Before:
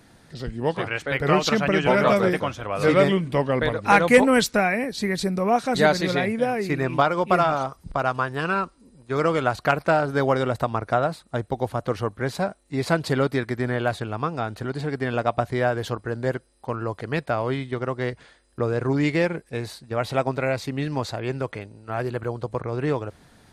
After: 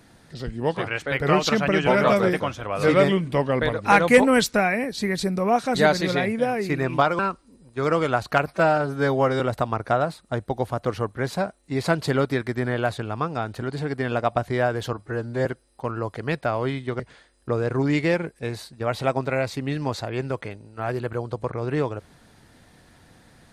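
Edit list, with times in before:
0:07.19–0:08.52: remove
0:09.80–0:10.42: time-stretch 1.5×
0:15.95–0:16.30: time-stretch 1.5×
0:17.84–0:18.10: remove

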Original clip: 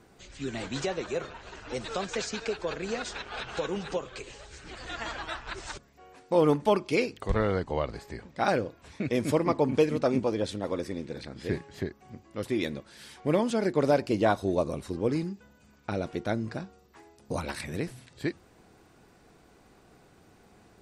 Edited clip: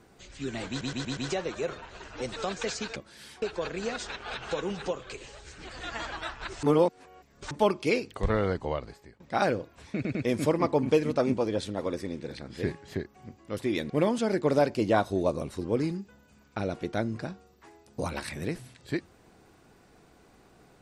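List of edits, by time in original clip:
0:00.69: stutter 0.12 s, 5 plays
0:05.69–0:06.57: reverse
0:07.66–0:08.26: fade out linear, to −23 dB
0:09.01: stutter 0.10 s, 3 plays
0:12.76–0:13.22: move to 0:02.48

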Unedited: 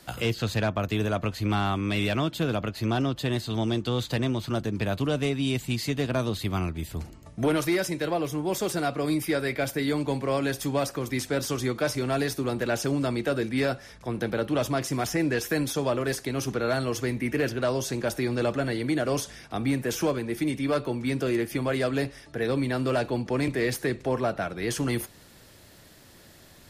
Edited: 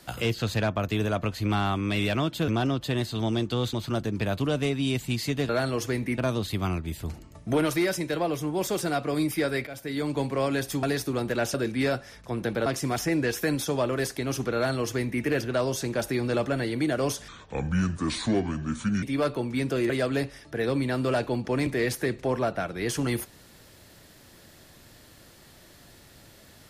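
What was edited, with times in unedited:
0:02.48–0:02.83: remove
0:04.08–0:04.33: remove
0:09.58–0:10.08: fade in, from −15 dB
0:10.74–0:12.14: remove
0:12.85–0:13.31: remove
0:14.43–0:14.74: remove
0:16.63–0:17.32: duplicate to 0:06.09
0:19.36–0:20.53: play speed 67%
0:21.40–0:21.71: remove

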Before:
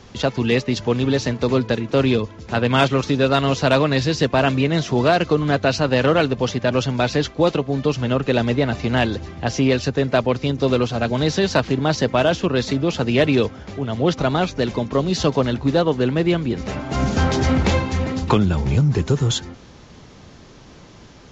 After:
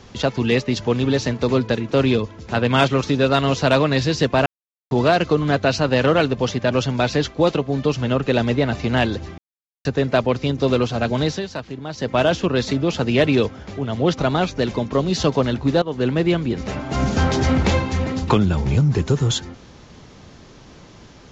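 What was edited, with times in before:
0:04.46–0:04.91: silence
0:09.38–0:09.85: silence
0:11.21–0:12.19: duck −11.5 dB, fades 0.25 s
0:15.82–0:16.07: fade in, from −15.5 dB

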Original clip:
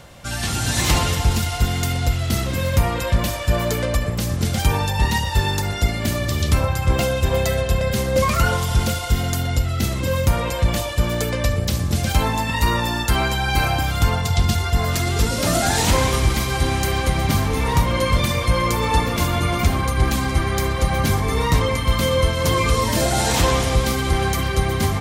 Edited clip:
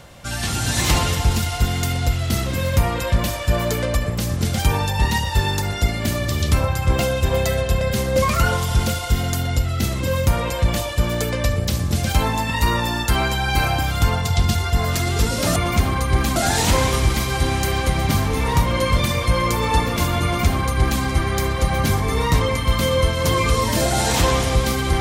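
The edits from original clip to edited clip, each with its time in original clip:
0:19.43–0:20.23: duplicate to 0:15.56

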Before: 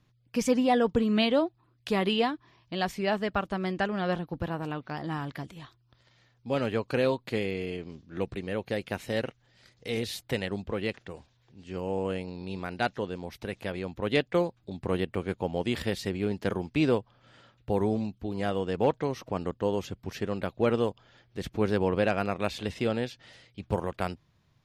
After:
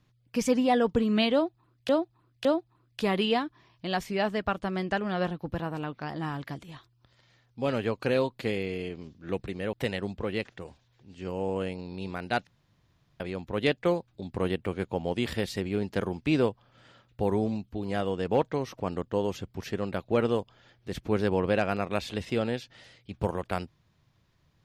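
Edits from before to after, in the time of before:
0:01.33–0:01.89: repeat, 3 plays
0:08.61–0:10.22: remove
0:12.96–0:13.69: fill with room tone

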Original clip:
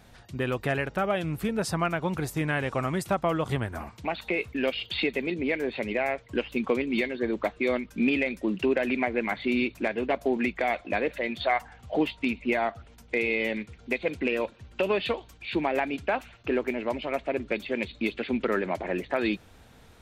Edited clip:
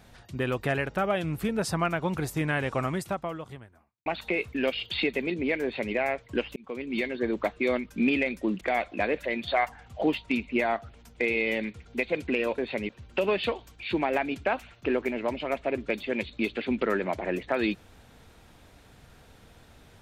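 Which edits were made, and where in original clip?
0:02.84–0:04.06: fade out quadratic
0:05.63–0:05.94: duplicate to 0:14.51
0:06.56–0:07.13: fade in
0:08.61–0:10.54: remove

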